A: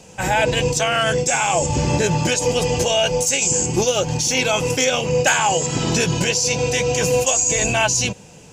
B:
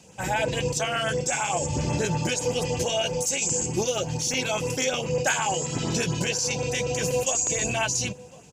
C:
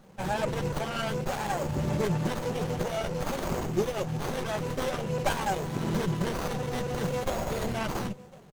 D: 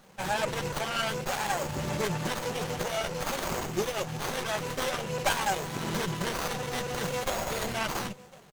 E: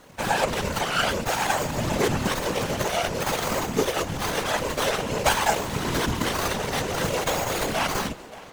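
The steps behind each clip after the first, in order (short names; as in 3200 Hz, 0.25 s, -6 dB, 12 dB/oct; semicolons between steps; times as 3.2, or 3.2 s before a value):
HPF 56 Hz; LFO notch saw up 8.3 Hz 410–5900 Hz; outdoor echo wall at 180 m, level -20 dB; gain -6.5 dB
comb 5.1 ms, depth 38%; running maximum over 17 samples; gain -2 dB
tilt shelf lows -5.5 dB, about 720 Hz
whisperiser; tape echo 0.575 s, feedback 73%, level -20.5 dB, low-pass 5200 Hz; gain +6 dB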